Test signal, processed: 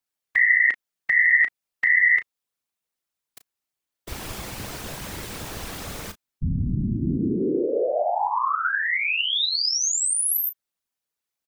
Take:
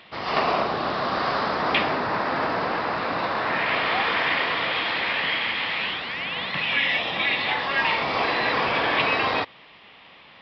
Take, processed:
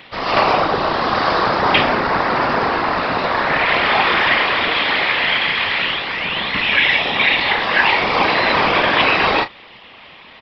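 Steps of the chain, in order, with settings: whisper effect; doubling 34 ms -11.5 dB; trim +7.5 dB

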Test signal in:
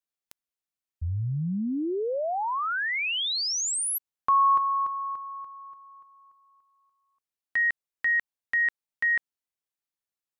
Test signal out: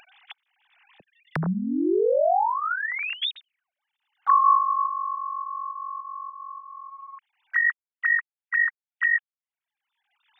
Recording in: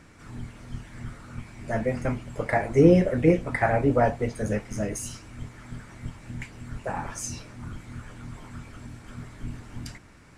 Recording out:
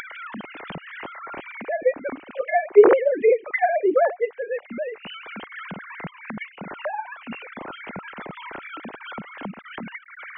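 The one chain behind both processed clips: formants replaced by sine waves; upward compressor, threshold -30 dBFS; tape noise reduction on one side only encoder only; trim +2.5 dB

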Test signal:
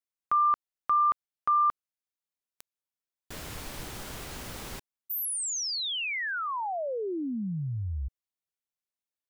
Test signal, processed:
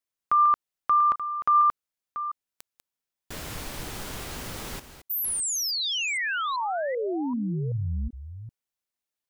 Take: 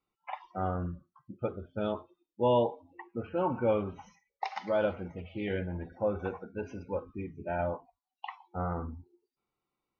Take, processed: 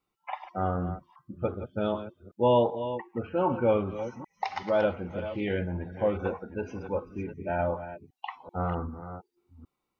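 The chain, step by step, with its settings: chunks repeated in reverse 386 ms, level -11 dB; trim +3.5 dB

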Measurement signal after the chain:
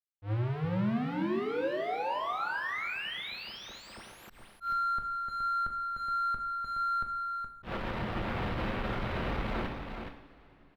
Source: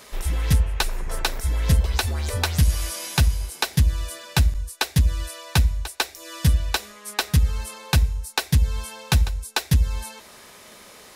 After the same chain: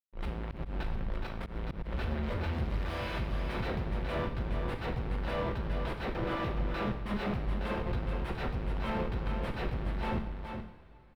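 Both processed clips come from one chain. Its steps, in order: gate -40 dBFS, range -8 dB; peaking EQ 11 kHz +2 dB 0.27 oct; Schmitt trigger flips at -37 dBFS; peak limiter -28.5 dBFS; saturation -34 dBFS; distance through air 420 m; delay 420 ms -6.5 dB; two-slope reverb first 0.56 s, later 3.3 s, from -16 dB, DRR 3.5 dB; slow attack 105 ms; trim +1.5 dB

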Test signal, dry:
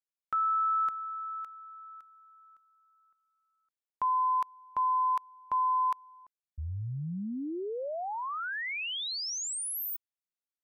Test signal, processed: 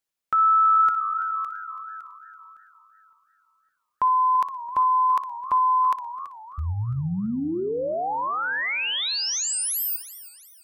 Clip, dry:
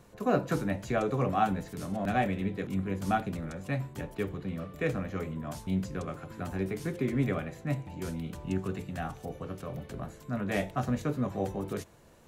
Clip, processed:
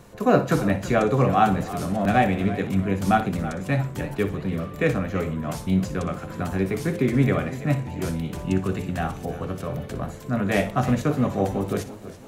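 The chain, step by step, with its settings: flutter echo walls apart 10.2 m, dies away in 0.27 s; modulated delay 332 ms, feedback 43%, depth 134 cents, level -15 dB; trim +8.5 dB

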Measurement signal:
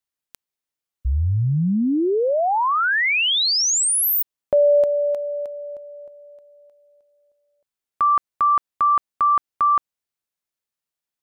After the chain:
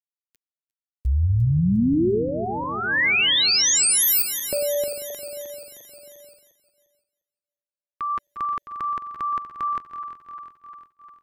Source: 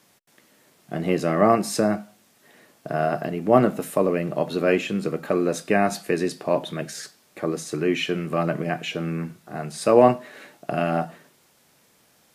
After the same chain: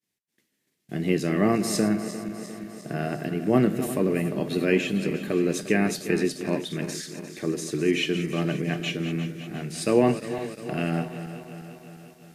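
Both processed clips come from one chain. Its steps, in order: backward echo that repeats 176 ms, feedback 77%, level -11.5 dB; high-order bell 850 Hz -10 dB; expander -47 dBFS, range -33 dB

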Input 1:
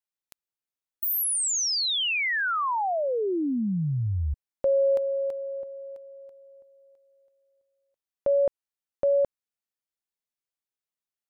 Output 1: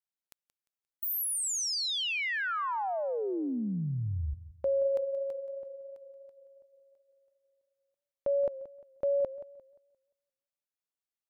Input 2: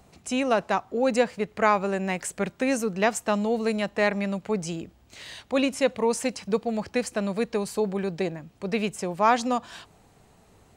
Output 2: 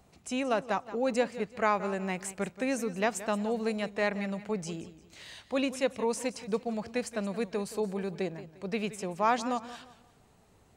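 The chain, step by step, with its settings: modulated delay 175 ms, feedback 33%, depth 90 cents, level -15 dB; trim -6 dB

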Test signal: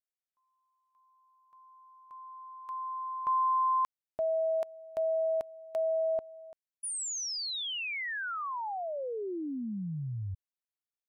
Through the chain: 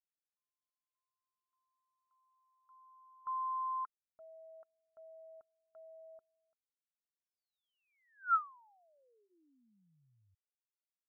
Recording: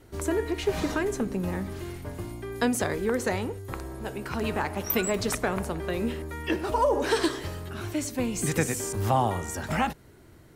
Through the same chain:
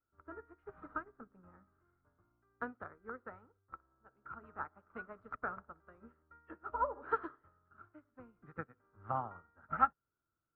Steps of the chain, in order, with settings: four-pole ladder low-pass 1.4 kHz, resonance 85%; band-stop 380 Hz, Q 12; upward expansion 2.5:1, over -46 dBFS; trim +3 dB

